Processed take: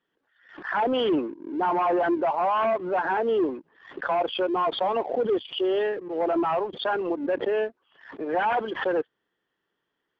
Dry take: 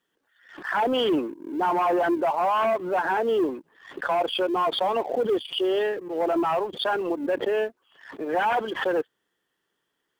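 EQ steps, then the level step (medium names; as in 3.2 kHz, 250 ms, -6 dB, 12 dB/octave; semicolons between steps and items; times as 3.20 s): distance through air 180 m; 0.0 dB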